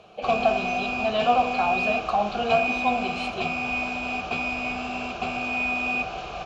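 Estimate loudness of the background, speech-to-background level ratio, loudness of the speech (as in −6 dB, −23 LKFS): −27.5 LKFS, 1.5 dB, −26.0 LKFS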